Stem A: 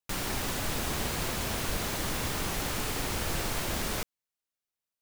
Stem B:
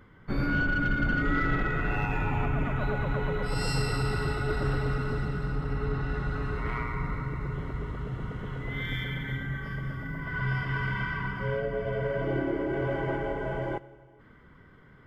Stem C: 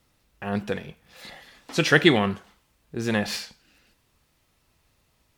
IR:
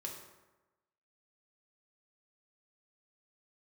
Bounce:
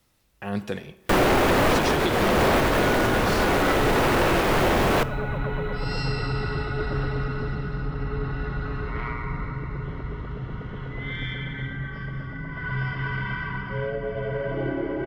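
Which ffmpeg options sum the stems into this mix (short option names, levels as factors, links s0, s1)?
-filter_complex "[0:a]acrossover=split=3100[s0][s1];[s1]acompressor=threshold=0.00316:ratio=4:attack=1:release=60[s2];[s0][s2]amix=inputs=2:normalize=0,equalizer=f=480:w=0.57:g=12,aeval=exprs='0.211*sin(PI/2*3.98*val(0)/0.211)':c=same,adelay=1000,volume=0.794,asplit=2[s3][s4];[s4]volume=0.335[s5];[1:a]lowpass=f=5400:w=0.5412,lowpass=f=5400:w=1.3066,adelay=2300,volume=1.19[s6];[2:a]acrossover=split=410|3000[s7][s8][s9];[s8]acompressor=threshold=0.0316:ratio=6[s10];[s7][s10][s9]amix=inputs=3:normalize=0,volume=0.75,asplit=2[s11][s12];[s12]volume=0.355[s13];[3:a]atrim=start_sample=2205[s14];[s5][s13]amix=inputs=2:normalize=0[s15];[s15][s14]afir=irnorm=-1:irlink=0[s16];[s3][s6][s11][s16]amix=inputs=4:normalize=0,highshelf=f=7500:g=4,alimiter=limit=0.211:level=0:latency=1:release=274"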